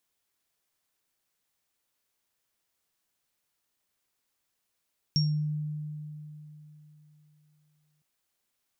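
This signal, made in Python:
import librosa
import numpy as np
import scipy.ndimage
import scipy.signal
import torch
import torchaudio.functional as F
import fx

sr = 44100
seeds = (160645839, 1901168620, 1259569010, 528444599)

y = fx.additive_free(sr, length_s=2.86, hz=151.0, level_db=-22, upper_db=(-0.5,), decay_s=3.46, upper_decays_s=(0.32,), upper_hz=(5540.0,))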